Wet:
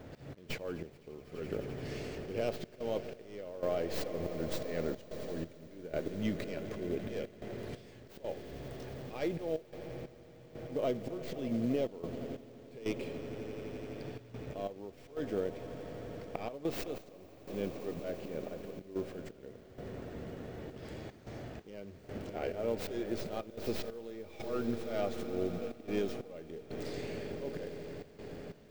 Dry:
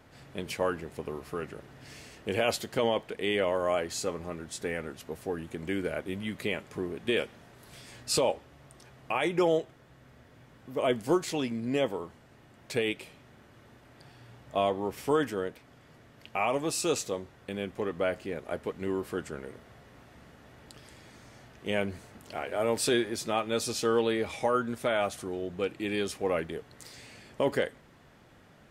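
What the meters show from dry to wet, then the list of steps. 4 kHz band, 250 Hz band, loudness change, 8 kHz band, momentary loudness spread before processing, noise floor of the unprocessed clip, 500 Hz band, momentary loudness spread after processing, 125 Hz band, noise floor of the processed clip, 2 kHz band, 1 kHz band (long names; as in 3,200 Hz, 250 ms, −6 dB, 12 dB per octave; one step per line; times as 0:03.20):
−12.5 dB, −5.0 dB, −8.5 dB, −17.0 dB, 14 LU, −57 dBFS, −7.0 dB, 11 LU, −2.5 dB, −56 dBFS, −12.5 dB, −12.5 dB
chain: stylus tracing distortion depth 0.33 ms
low shelf with overshoot 740 Hz +6.5 dB, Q 1.5
downward compressor 12 to 1, threshold −31 dBFS, peak gain reduction 18 dB
volume swells 165 ms
echo that builds up and dies away 85 ms, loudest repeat 8, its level −17.5 dB
gate pattern "xx.xx...xxxxxx" 91 BPM −12 dB
log-companded quantiser 6 bits
parametric band 11,000 Hz −11.5 dB 1.2 octaves
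level +2 dB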